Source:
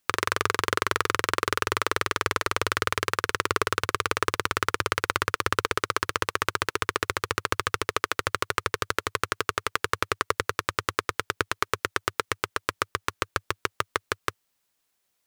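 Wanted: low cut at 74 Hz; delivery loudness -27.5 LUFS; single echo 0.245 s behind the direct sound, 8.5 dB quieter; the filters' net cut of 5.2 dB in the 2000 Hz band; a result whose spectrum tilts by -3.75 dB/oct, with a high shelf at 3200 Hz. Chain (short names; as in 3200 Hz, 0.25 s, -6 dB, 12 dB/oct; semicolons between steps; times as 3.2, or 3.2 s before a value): HPF 74 Hz; bell 2000 Hz -4.5 dB; high shelf 3200 Hz -8 dB; echo 0.245 s -8.5 dB; gain +3 dB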